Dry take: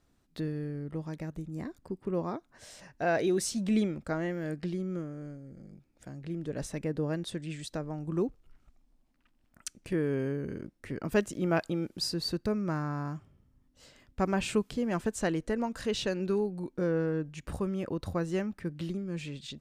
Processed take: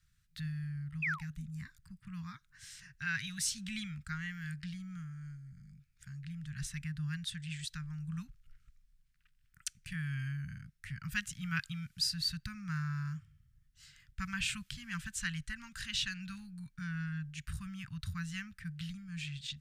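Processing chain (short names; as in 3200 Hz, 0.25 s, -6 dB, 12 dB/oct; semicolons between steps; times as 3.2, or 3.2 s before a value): painted sound fall, 1.02–1.46, 200–2700 Hz -34 dBFS; dynamic EQ 3100 Hz, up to +4 dB, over -53 dBFS, Q 1.6; elliptic band-stop 150–1500 Hz, stop band 60 dB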